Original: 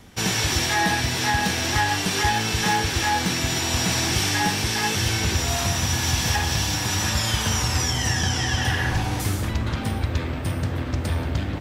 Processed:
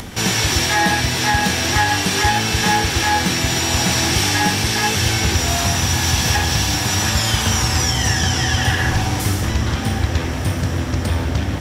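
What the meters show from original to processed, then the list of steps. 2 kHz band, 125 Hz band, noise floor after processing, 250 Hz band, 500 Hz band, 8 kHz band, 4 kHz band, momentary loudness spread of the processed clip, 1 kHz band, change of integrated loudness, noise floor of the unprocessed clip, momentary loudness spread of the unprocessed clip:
+5.5 dB, +5.0 dB, −23 dBFS, +5.5 dB, +5.5 dB, +5.5 dB, +5.5 dB, 5 LU, +5.0 dB, +5.5 dB, −28 dBFS, 5 LU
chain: upward compression, threshold −27 dBFS
feedback delay with all-pass diffusion 1,329 ms, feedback 56%, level −13.5 dB
level +5 dB

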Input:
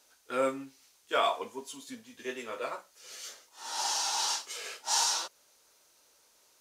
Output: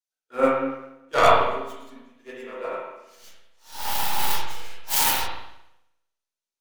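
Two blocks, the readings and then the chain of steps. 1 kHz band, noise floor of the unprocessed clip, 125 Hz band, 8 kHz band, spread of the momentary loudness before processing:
+10.0 dB, −66 dBFS, can't be measured, +1.0 dB, 17 LU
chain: stylus tracing distortion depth 0.39 ms
spring reverb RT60 1.6 s, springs 33/37/49 ms, chirp 65 ms, DRR −4 dB
multiband upward and downward expander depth 100%

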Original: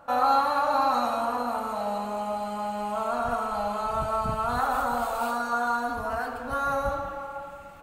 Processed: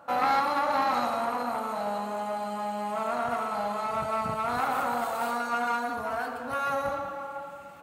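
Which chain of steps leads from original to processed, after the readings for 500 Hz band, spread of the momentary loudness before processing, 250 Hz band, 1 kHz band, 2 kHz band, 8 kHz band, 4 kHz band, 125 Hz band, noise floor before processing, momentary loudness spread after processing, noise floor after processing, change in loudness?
−2.0 dB, 8 LU, −1.5 dB, −2.0 dB, 0.0 dB, −1.5 dB, −0.5 dB, −5.0 dB, −41 dBFS, 7 LU, −41 dBFS, −2.0 dB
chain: one-sided soft clipper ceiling −24.5 dBFS
high-pass filter 130 Hz 12 dB per octave

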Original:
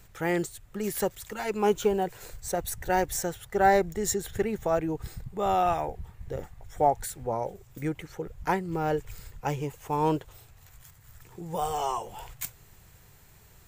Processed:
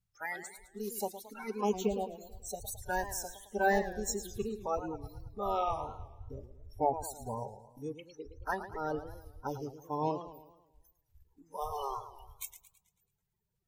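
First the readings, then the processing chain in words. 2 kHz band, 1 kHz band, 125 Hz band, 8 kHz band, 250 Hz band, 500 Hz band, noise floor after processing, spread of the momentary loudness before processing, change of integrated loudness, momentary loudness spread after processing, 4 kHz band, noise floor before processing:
−4.5 dB, −7.5 dB, −9.5 dB, −6.5 dB, −8.0 dB, −8.0 dB, −82 dBFS, 13 LU, −7.5 dB, 15 LU, −7.5 dB, −55 dBFS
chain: spectral magnitudes quantised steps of 30 dB
noise reduction from a noise print of the clip's start 23 dB
feedback echo with a swinging delay time 109 ms, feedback 49%, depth 175 cents, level −12 dB
level −6 dB

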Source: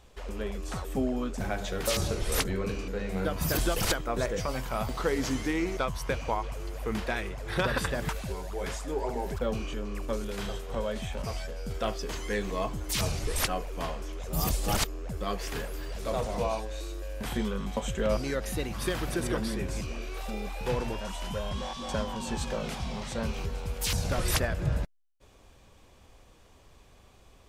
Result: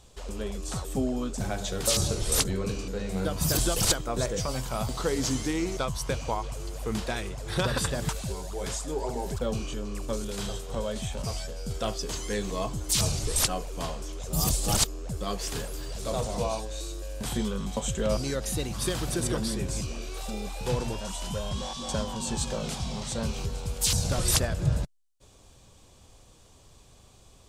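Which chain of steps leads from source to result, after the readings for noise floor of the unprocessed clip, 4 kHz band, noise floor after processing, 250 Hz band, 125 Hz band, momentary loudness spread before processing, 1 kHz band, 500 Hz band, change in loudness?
−57 dBFS, +4.5 dB, −55 dBFS, +1.5 dB, +3.0 dB, 8 LU, −0.5 dB, 0.0 dB, +2.5 dB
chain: octave-band graphic EQ 125/2,000/4,000/8,000 Hz +5/−5/+4/+9 dB

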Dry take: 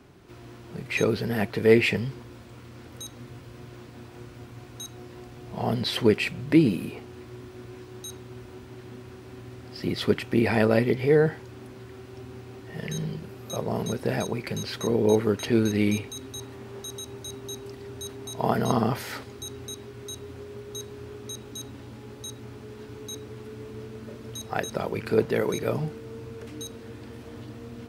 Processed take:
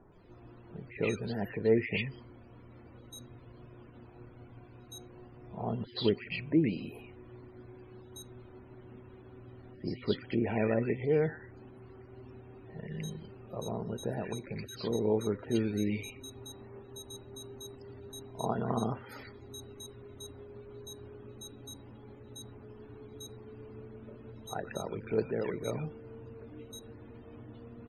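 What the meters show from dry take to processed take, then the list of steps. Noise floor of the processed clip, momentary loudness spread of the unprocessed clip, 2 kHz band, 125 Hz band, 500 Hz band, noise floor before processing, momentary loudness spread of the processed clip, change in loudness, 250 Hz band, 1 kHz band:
−54 dBFS, 22 LU, −10.5 dB, −8.0 dB, −8.0 dB, −46 dBFS, 22 LU, −8.0 dB, −8.0 dB, −9.0 dB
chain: notch filter 5,900 Hz, Q 6.3
hum removal 255 Hz, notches 2
background noise pink −52 dBFS
spectral peaks only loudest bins 64
multiband delay without the direct sound lows, highs 120 ms, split 1,700 Hz
level −8 dB

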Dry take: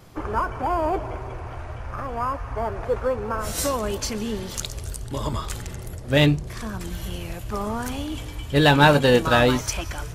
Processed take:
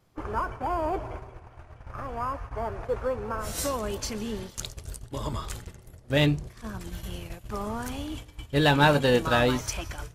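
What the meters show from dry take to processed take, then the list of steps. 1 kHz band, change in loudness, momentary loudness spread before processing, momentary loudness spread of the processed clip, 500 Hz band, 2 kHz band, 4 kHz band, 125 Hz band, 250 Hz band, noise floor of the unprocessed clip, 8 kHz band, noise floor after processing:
−5.0 dB, −4.5 dB, 16 LU, 17 LU, −5.0 dB, −5.0 dB, −5.0 dB, −5.0 dB, −5.0 dB, −36 dBFS, −5.5 dB, −52 dBFS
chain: noise gate −31 dBFS, range −12 dB
level −5 dB

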